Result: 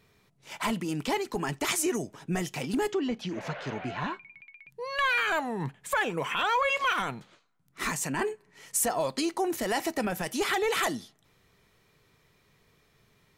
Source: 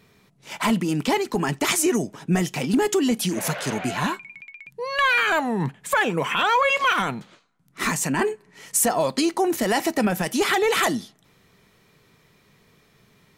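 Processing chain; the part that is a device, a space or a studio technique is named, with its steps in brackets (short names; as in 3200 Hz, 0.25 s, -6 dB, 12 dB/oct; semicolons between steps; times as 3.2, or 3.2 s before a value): 2.92–4.69 air absorption 200 m; low shelf boost with a cut just above (low shelf 84 Hz +6 dB; bell 200 Hz -5 dB 0.96 oct); gain -6.5 dB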